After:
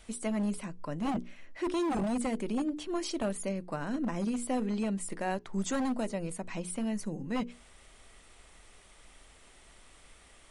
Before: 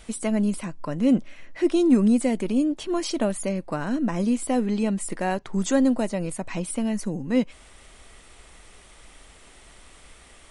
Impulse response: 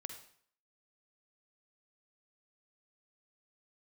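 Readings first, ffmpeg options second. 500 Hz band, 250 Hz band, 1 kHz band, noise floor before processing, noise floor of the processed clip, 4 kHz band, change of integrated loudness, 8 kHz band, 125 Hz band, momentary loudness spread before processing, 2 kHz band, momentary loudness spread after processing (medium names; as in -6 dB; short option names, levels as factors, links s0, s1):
-9.0 dB, -10.0 dB, -4.5 dB, -51 dBFS, -58 dBFS, -6.5 dB, -9.5 dB, -7.0 dB, -8.0 dB, 9 LU, -6.5 dB, 6 LU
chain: -filter_complex "[0:a]bandreject=f=60:t=h:w=6,bandreject=f=120:t=h:w=6,bandreject=f=180:t=h:w=6,bandreject=f=240:t=h:w=6,bandreject=f=300:t=h:w=6,bandreject=f=360:t=h:w=6,bandreject=f=420:t=h:w=6,bandreject=f=480:t=h:w=6,acrossover=split=760[s0][s1];[s0]aeval=exprs='0.112*(abs(mod(val(0)/0.112+3,4)-2)-1)':c=same[s2];[s2][s1]amix=inputs=2:normalize=0,volume=0.447"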